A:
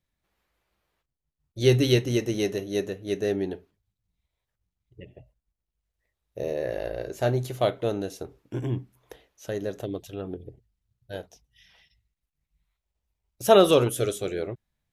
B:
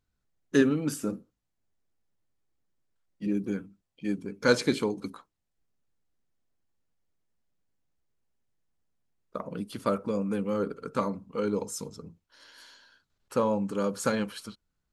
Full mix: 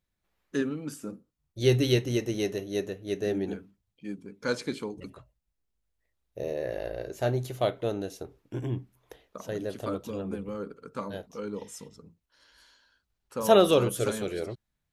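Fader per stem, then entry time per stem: −3.0, −7.0 decibels; 0.00, 0.00 seconds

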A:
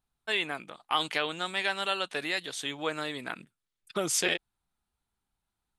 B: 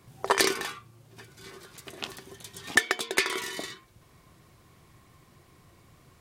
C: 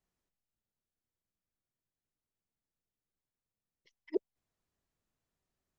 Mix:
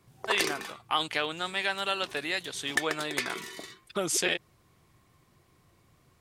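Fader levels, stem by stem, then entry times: 0.0, −6.5, −9.5 decibels; 0.00, 0.00, 0.00 seconds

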